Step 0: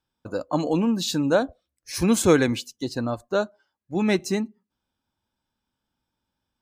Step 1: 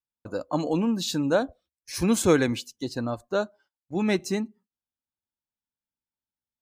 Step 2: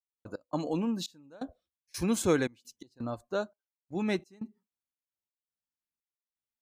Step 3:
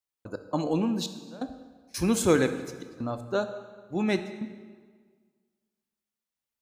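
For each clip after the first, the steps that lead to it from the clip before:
noise gate −53 dBFS, range −18 dB; level −2.5 dB
gate pattern ".x.xxx..xx.xxx" 85 BPM −24 dB; level −6 dB
convolution reverb RT60 1.7 s, pre-delay 13 ms, DRR 9 dB; level +4 dB

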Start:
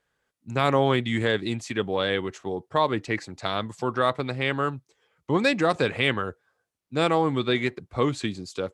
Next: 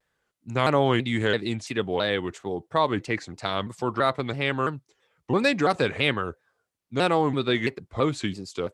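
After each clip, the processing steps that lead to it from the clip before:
pitch modulation by a square or saw wave saw down 3 Hz, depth 160 cents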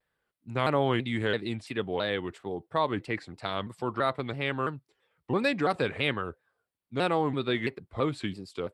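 parametric band 6,400 Hz −13 dB 0.44 octaves
level −4.5 dB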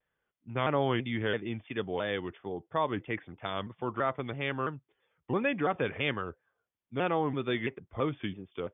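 linear-phase brick-wall low-pass 3,600 Hz
level −2.5 dB

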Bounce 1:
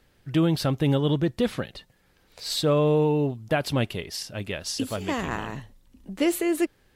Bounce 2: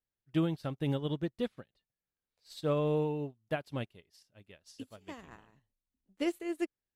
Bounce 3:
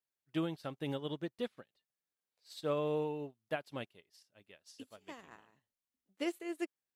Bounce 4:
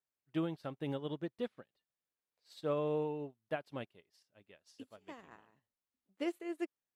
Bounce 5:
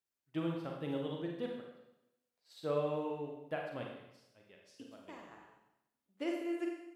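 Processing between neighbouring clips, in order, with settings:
expander for the loud parts 2.5 to 1, over −37 dBFS; level −6.5 dB
high-pass filter 350 Hz 6 dB per octave; level −1.5 dB
high-shelf EQ 2,900 Hz −8.5 dB
four-comb reverb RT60 0.87 s, combs from 32 ms, DRR 0 dB; level −2 dB

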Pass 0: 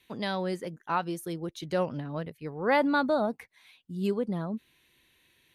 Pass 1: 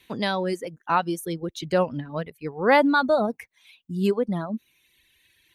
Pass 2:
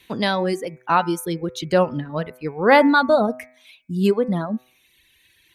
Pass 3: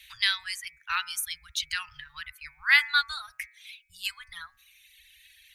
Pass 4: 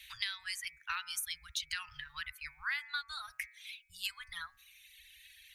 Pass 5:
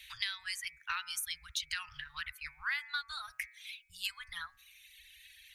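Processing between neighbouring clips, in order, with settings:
reverb reduction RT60 1.6 s; level +7 dB
hum removal 126.4 Hz, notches 20; level +4.5 dB
inverse Chebyshev band-stop filter 200–570 Hz, stop band 70 dB; level +2.5 dB
downward compressor 12 to 1, threshold −32 dBFS, peak gain reduction 18 dB; level −1.5 dB
highs frequency-modulated by the lows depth 0.27 ms; level +1 dB

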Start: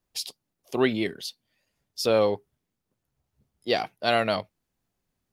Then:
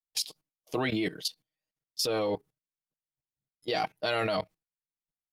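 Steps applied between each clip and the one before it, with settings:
noise gate with hold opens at −53 dBFS
comb filter 6.4 ms, depth 69%
output level in coarse steps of 16 dB
level +3.5 dB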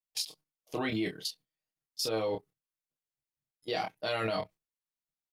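double-tracking delay 27 ms −5 dB
level −4.5 dB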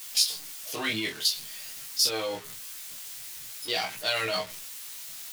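converter with a step at zero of −41 dBFS
chorus effect 0.48 Hz, delay 15.5 ms, depth 3.4 ms
tilt shelving filter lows −8.5 dB, about 1,300 Hz
level +6 dB

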